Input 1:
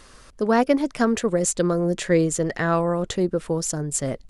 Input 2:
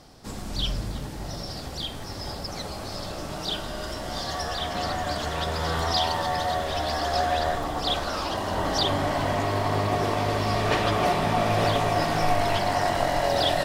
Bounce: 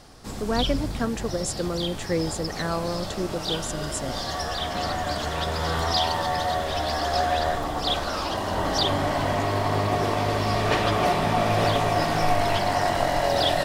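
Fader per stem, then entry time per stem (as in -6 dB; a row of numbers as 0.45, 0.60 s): -7.0, +1.0 dB; 0.00, 0.00 s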